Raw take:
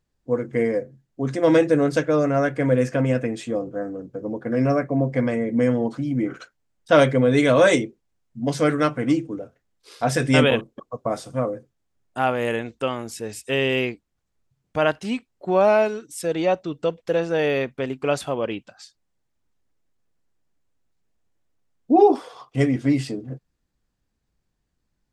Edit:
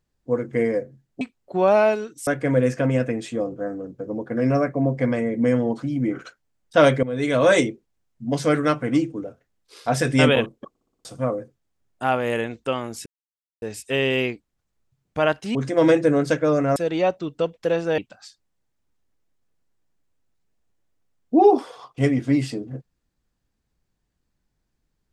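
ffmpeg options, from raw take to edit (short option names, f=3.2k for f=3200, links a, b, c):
-filter_complex "[0:a]asplit=14[a][b][c][d][e][f][g][h][i][j][k][l][m][n];[a]atrim=end=1.212[o];[b]atrim=start=15.138:end=16.202[p];[c]atrim=start=2.418:end=7.18,asetpts=PTS-STARTPTS,afade=t=out:st=4.758:d=0.004:c=hsin:silence=0.188365[q];[d]atrim=start=7.18:end=10.902,asetpts=PTS-STARTPTS,afade=t=in:d=0.51:silence=0.188365[r];[e]atrim=start=10.838:end=10.902[s];[f]atrim=start=10.838:end=10.902[t];[g]atrim=start=10.838:end=10.902[u];[h]atrim=start=10.838:end=10.902[v];[i]atrim=start=10.838:end=10.902[w];[j]atrim=start=11.198:end=13.21,asetpts=PTS-STARTPTS,afade=t=out:st=2.008:d=0.004:c=hsin,apad=pad_dur=0.56[x];[k]atrim=start=13.21:end=15.142,asetpts=PTS-STARTPTS,afade=t=in:d=0.004:c=hsin[y];[l]atrim=start=1.208:end=2.422[z];[m]atrim=start=16.198:end=17.422[aa];[n]atrim=start=18.548[ab];[o][p]acrossfade=d=0.004:c1=hsin:c2=hsin[ac];[q][r]concat=n=2:v=0:a=1[ad];[ac][ad]acrossfade=d=0.004:c1=hsin:c2=hsin[ae];[ae][s]acrossfade=d=0.004:c1=hsin:c2=hsin[af];[af][t]acrossfade=d=0.004:c1=hsin:c2=hsin[ag];[ag][u]acrossfade=d=0.004:c1=hsin:c2=hsin[ah];[ah][v]acrossfade=d=0.004:c1=hsin:c2=hsin[ai];[ai][w]acrossfade=d=0.004:c1=hsin:c2=hsin[aj];[x][y]concat=n=2:v=0:a=1[ak];[aj][ak]acrossfade=d=0.004:c1=hsin:c2=hsin[al];[al][z]acrossfade=d=0.004:c1=hsin:c2=hsin[am];[am][aa]acrossfade=d=0.004:c1=hsin:c2=hsin[an];[an][ab]acrossfade=d=0.004:c1=hsin:c2=hsin"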